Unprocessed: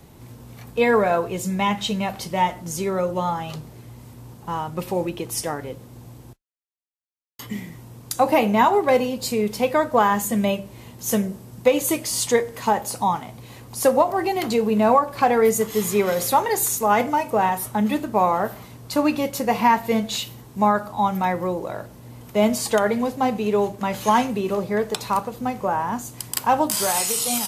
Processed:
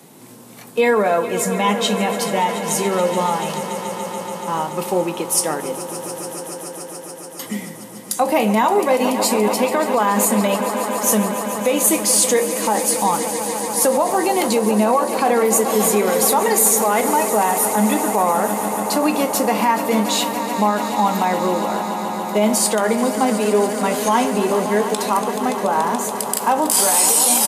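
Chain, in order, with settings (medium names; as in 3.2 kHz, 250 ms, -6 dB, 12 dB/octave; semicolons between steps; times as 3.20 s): on a send: echo with a slow build-up 143 ms, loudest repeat 5, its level -15.5 dB; on the sum: peak limiter -12.5 dBFS, peak gain reduction 8 dB; high-pass 180 Hz 24 dB/octave; peaking EQ 9.4 kHz +7.5 dB 0.8 oct; doubling 19 ms -14 dB; trim +4.5 dB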